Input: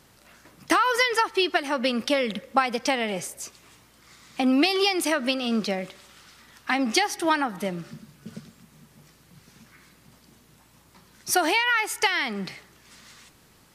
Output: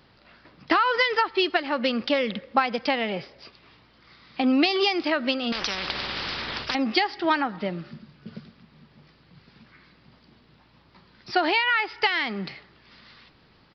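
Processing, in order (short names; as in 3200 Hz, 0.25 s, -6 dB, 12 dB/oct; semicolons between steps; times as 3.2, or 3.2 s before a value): downsampling 11025 Hz; 5.52–6.75 spectral compressor 10:1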